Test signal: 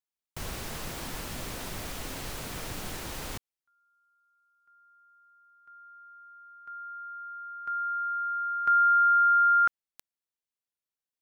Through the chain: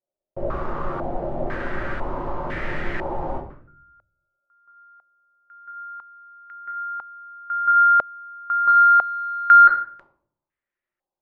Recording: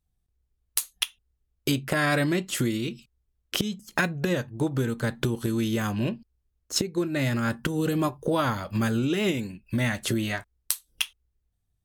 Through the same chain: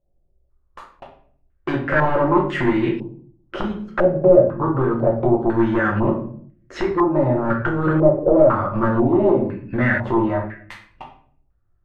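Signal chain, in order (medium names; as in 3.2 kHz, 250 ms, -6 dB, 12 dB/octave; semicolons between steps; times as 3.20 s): small resonant body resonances 350/560 Hz, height 8 dB; sine folder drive 10 dB, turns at -7.5 dBFS; simulated room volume 68 m³, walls mixed, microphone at 0.85 m; step-sequenced low-pass 2 Hz 610–1900 Hz; trim -12 dB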